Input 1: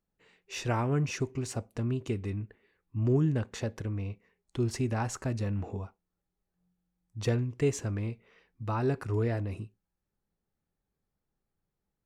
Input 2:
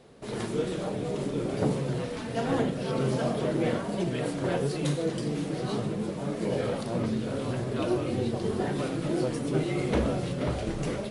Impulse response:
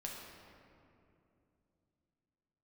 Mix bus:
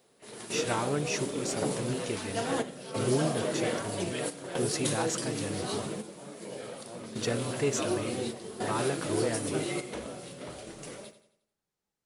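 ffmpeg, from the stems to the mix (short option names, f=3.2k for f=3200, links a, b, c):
-filter_complex "[0:a]lowpass=6.4k,volume=1dB,asplit=2[a][b];[1:a]volume=-1dB,asplit=2[c][d];[d]volume=-22dB[e];[b]apad=whole_len=489941[f];[c][f]sidechaingate=range=-9dB:threshold=-56dB:ratio=16:detection=peak[g];[e]aecho=0:1:88|176|264|352|440|528:1|0.42|0.176|0.0741|0.0311|0.0131[h];[a][g][h]amix=inputs=3:normalize=0,aemphasis=mode=production:type=bsi"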